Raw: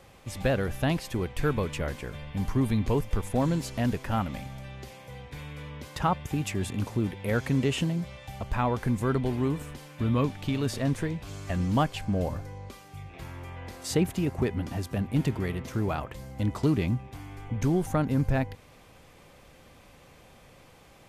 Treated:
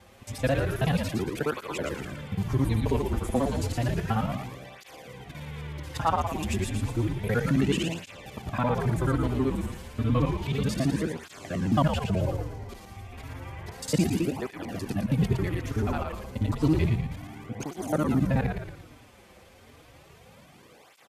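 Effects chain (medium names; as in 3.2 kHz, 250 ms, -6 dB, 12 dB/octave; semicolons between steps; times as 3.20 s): time reversed locally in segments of 54 ms; high-pass 54 Hz; frequency-shifting echo 114 ms, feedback 45%, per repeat -75 Hz, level -5 dB; cancelling through-zero flanger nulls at 0.31 Hz, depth 7.3 ms; trim +3 dB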